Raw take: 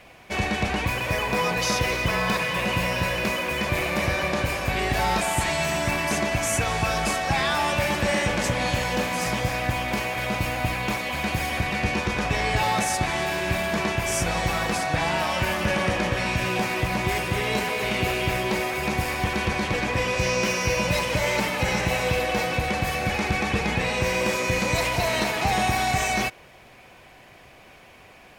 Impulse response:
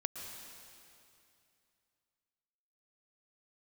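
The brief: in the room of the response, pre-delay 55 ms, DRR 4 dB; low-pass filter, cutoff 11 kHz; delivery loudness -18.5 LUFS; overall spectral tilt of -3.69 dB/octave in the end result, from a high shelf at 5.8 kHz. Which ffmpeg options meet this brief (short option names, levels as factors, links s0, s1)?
-filter_complex "[0:a]lowpass=11000,highshelf=f=5800:g=3.5,asplit=2[s0][s1];[1:a]atrim=start_sample=2205,adelay=55[s2];[s1][s2]afir=irnorm=-1:irlink=0,volume=0.596[s3];[s0][s3]amix=inputs=2:normalize=0,volume=1.58"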